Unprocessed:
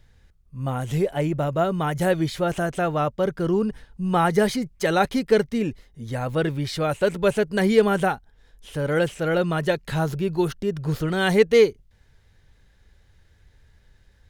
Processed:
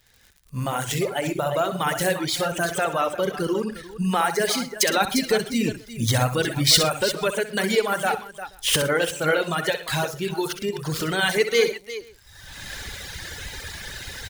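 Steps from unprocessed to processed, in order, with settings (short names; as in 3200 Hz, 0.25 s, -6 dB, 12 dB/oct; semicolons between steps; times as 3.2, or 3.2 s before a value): median filter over 3 samples; recorder AGC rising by 28 dB/s; 5.01–7.13 tone controls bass +7 dB, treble +4 dB; tapped delay 64/111/128/350/479 ms -5.5/-10.5/-12.5/-9/-18 dB; reverb removal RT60 1.5 s; crackle 71/s -45 dBFS; tilt +3 dB/oct; gain -1 dB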